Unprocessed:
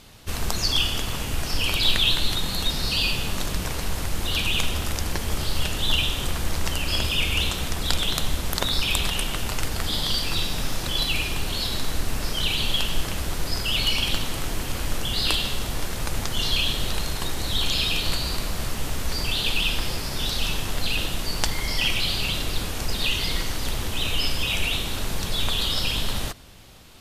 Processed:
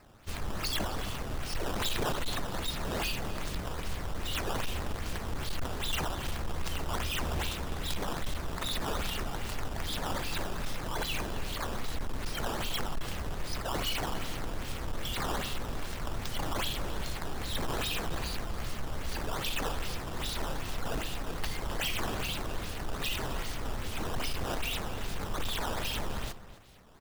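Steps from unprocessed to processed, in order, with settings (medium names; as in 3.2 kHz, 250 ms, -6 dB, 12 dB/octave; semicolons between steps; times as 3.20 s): decimation with a swept rate 12×, swing 160% 2.5 Hz; echo from a far wall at 45 m, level -14 dB; overload inside the chain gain 18 dB; trim -8.5 dB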